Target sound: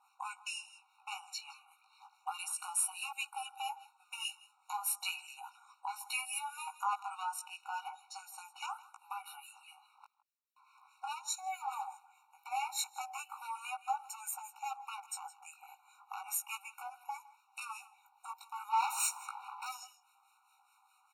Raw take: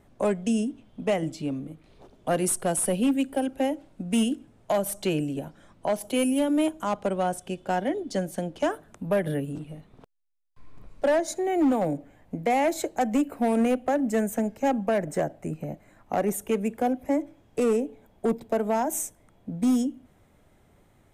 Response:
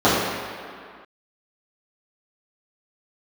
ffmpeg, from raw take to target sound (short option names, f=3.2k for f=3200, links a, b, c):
-filter_complex "[0:a]flanger=delay=16:depth=2.9:speed=0.35,asplit=3[a][b][c];[a]afade=t=out:st=18.71:d=0.02[d];[b]asplit=2[e][f];[f]highpass=f=720:p=1,volume=31dB,asoftclip=type=tanh:threshold=-17dB[g];[e][g]amix=inputs=2:normalize=0,lowpass=f=2k:p=1,volume=-6dB,afade=t=in:st=18.71:d=0.02,afade=t=out:st=19.7:d=0.02[h];[c]afade=t=in:st=19.7:d=0.02[i];[d][h][i]amix=inputs=3:normalize=0,highpass=420,alimiter=level_in=3.5dB:limit=-24dB:level=0:latency=1:release=104,volume=-3.5dB,asplit=2[j][k];[k]aecho=0:1:161:0.119[l];[j][l]amix=inputs=2:normalize=0,acrossover=split=1200[m][n];[m]aeval=exprs='val(0)*(1-0.7/2+0.7/2*cos(2*PI*4.8*n/s))':c=same[o];[n]aeval=exprs='val(0)*(1-0.7/2-0.7/2*cos(2*PI*4.8*n/s))':c=same[p];[o][p]amix=inputs=2:normalize=0,afftfilt=real='re*eq(mod(floor(b*sr/1024/740),2),1)':imag='im*eq(mod(floor(b*sr/1024/740),2),1)':win_size=1024:overlap=0.75,volume=8dB"